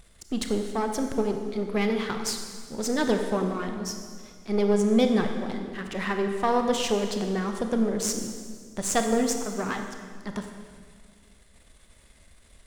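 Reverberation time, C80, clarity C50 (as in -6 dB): 1.9 s, 7.0 dB, 6.0 dB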